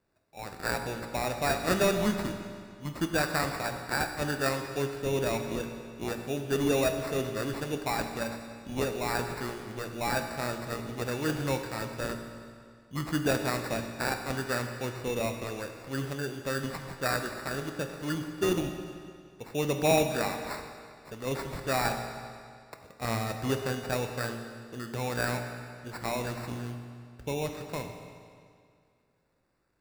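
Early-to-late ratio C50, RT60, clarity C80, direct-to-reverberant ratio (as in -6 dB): 6.5 dB, 2.2 s, 7.5 dB, 5.0 dB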